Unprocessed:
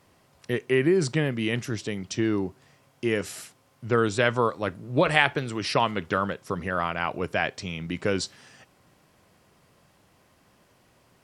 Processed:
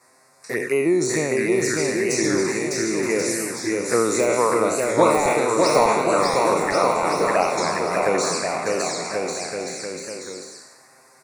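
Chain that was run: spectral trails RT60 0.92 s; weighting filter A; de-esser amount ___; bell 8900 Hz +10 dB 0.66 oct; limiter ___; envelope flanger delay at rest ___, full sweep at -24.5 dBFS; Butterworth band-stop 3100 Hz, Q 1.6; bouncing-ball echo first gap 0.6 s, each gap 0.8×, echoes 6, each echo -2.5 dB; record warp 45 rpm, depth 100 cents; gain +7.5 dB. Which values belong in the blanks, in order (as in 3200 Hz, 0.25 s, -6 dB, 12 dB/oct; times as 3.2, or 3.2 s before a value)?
65%, -10 dBFS, 8.3 ms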